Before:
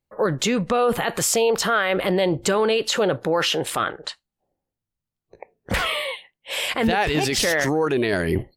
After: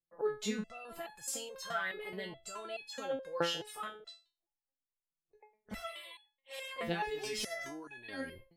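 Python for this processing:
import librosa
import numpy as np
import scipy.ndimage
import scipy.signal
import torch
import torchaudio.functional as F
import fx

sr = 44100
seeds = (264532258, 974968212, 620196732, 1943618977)

y = fx.low_shelf(x, sr, hz=400.0, db=-6.0, at=(3.53, 3.95))
y = fx.resonator_held(y, sr, hz=4.7, low_hz=170.0, high_hz=840.0)
y = F.gain(torch.from_numpy(y), -3.5).numpy()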